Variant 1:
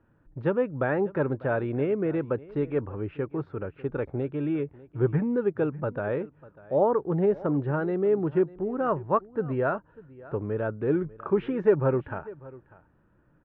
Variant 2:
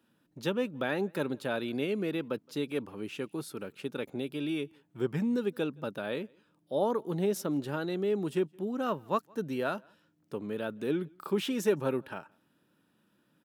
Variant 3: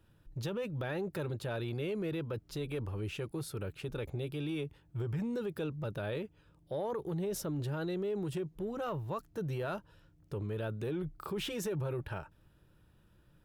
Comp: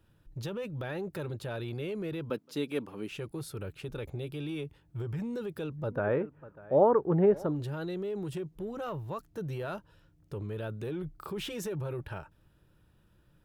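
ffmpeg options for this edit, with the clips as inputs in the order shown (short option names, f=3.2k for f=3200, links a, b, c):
-filter_complex "[2:a]asplit=3[a][b][c];[a]atrim=end=2.302[d];[1:a]atrim=start=2.298:end=3.112[e];[b]atrim=start=3.108:end=6[f];[0:a]atrim=start=5.76:end=7.6[g];[c]atrim=start=7.36[h];[d][e]acrossfade=d=0.004:c1=hsin:c2=hsin[i];[i][f]acrossfade=d=0.004:c1=hsin:c2=hsin[j];[j][g]acrossfade=d=0.24:c1=tri:c2=tri[k];[k][h]acrossfade=d=0.24:c1=tri:c2=tri"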